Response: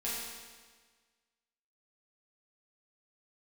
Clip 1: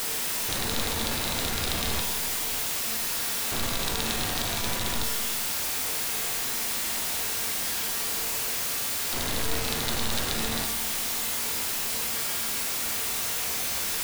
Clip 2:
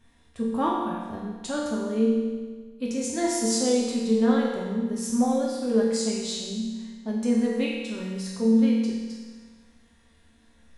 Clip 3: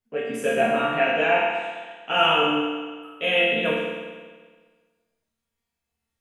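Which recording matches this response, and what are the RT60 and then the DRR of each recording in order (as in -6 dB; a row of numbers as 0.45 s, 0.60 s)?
3; 1.5 s, 1.5 s, 1.5 s; 3.5 dB, -5.0 dB, -9.0 dB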